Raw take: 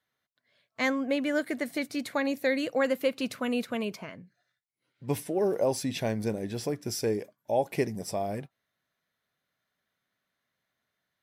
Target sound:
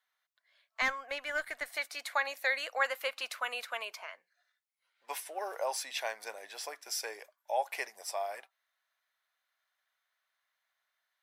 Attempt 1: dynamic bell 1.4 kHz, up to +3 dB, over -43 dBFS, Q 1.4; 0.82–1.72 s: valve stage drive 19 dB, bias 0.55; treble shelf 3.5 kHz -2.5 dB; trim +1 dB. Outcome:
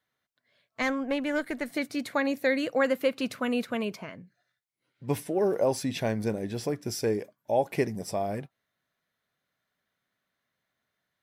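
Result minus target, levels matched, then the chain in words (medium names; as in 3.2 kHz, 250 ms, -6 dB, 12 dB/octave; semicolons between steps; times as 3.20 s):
1 kHz band -4.5 dB
dynamic bell 1.4 kHz, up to +3 dB, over -43 dBFS, Q 1.4; high-pass 750 Hz 24 dB/octave; 0.82–1.72 s: valve stage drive 19 dB, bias 0.55; treble shelf 3.5 kHz -2.5 dB; trim +1 dB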